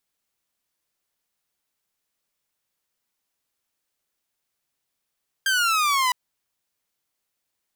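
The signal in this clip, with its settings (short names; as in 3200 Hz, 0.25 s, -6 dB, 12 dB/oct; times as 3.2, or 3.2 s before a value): laser zap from 1600 Hz, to 980 Hz, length 0.66 s saw, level -16 dB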